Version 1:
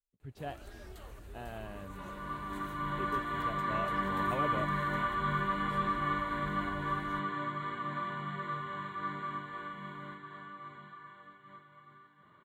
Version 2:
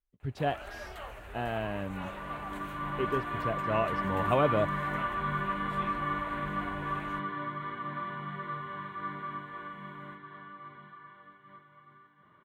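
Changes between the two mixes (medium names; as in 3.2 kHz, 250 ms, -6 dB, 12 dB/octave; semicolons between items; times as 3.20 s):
speech +11.0 dB; first sound: add high-order bell 1.3 kHz +12.5 dB 2.8 oct; second sound: add low-pass 3.4 kHz 24 dB/octave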